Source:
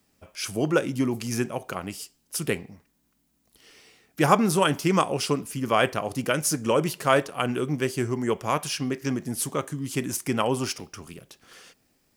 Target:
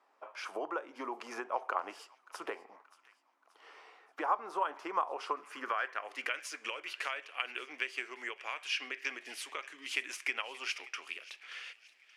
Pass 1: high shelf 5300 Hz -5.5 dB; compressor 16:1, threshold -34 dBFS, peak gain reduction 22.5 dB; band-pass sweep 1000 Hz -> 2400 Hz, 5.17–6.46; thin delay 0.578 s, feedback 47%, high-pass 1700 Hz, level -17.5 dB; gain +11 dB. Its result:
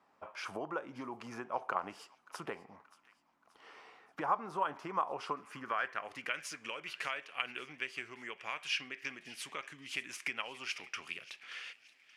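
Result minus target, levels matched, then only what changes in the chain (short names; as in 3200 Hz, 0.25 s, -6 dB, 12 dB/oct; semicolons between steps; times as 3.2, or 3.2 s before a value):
250 Hz band +3.0 dB
add first: HPF 330 Hz 24 dB/oct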